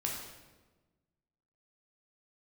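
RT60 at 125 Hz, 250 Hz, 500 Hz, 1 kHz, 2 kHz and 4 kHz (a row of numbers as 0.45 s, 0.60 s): 1.7 s, 1.6 s, 1.4 s, 1.1 s, 1.0 s, 0.90 s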